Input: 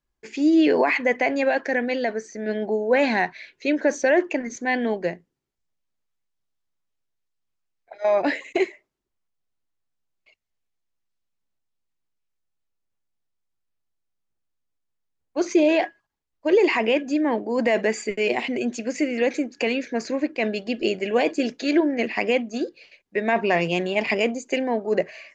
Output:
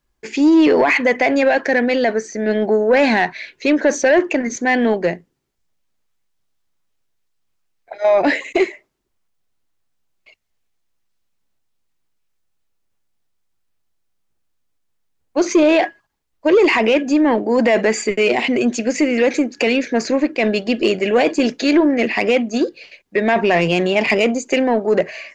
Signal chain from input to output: in parallel at -1 dB: limiter -17 dBFS, peak gain reduction 8.5 dB; on the sum: soft clip -9.5 dBFS, distortion -20 dB; gain +4 dB

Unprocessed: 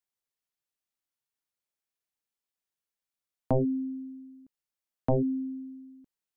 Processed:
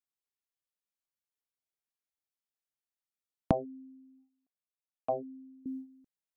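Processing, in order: gate -46 dBFS, range -13 dB; 3.51–5.66 vowel filter a; gain +5.5 dB

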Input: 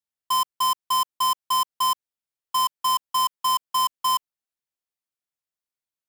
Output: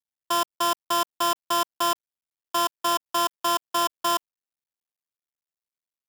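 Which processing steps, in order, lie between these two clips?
cycle switcher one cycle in 3, muted

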